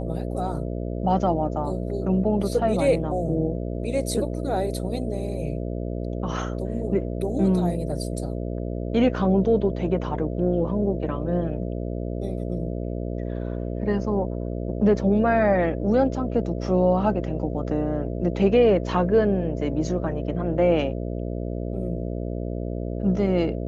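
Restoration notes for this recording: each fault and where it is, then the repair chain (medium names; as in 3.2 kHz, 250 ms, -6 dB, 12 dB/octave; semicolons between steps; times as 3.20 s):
buzz 60 Hz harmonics 11 -29 dBFS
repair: de-hum 60 Hz, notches 11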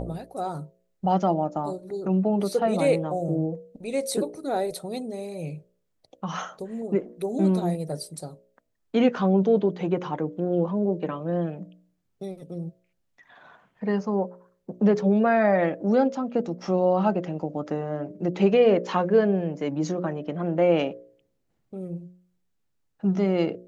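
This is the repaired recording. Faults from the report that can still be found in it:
nothing left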